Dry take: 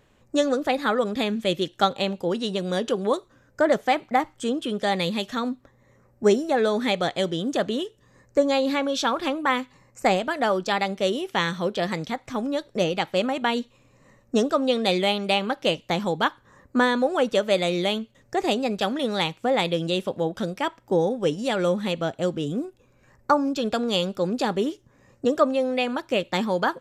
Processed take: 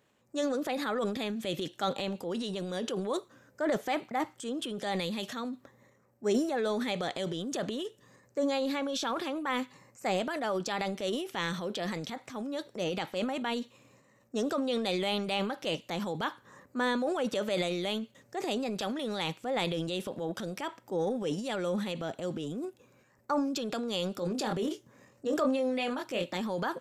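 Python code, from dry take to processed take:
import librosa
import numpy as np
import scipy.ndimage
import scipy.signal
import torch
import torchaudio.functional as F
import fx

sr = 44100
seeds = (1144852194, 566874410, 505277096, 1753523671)

y = fx.doubler(x, sr, ms=23.0, db=-6.0, at=(24.14, 26.37))
y = scipy.signal.sosfilt(scipy.signal.butter(2, 140.0, 'highpass', fs=sr, output='sos'), y)
y = fx.high_shelf(y, sr, hz=7200.0, db=5.0)
y = fx.transient(y, sr, attack_db=-4, sustain_db=9)
y = y * 10.0 ** (-9.0 / 20.0)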